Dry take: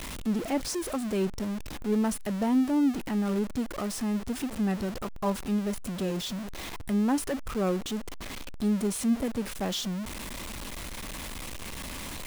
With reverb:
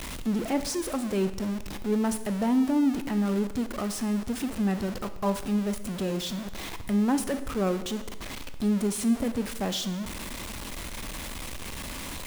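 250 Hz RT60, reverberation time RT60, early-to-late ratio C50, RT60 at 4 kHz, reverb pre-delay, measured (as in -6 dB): 1.1 s, 1.1 s, 12.5 dB, 1.0 s, 22 ms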